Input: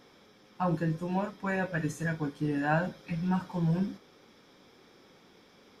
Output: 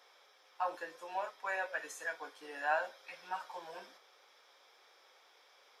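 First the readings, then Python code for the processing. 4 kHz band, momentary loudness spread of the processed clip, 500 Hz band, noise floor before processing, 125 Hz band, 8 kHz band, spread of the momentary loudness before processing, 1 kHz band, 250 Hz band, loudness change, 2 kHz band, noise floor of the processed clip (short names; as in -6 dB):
-2.5 dB, 14 LU, -7.0 dB, -60 dBFS, under -40 dB, -2.5 dB, 5 LU, -3.0 dB, -29.5 dB, -8.0 dB, -2.5 dB, -65 dBFS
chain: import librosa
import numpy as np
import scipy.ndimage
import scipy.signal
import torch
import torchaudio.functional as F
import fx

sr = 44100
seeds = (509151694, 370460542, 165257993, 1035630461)

y = scipy.signal.sosfilt(scipy.signal.butter(4, 580.0, 'highpass', fs=sr, output='sos'), x)
y = y * 10.0 ** (-2.5 / 20.0)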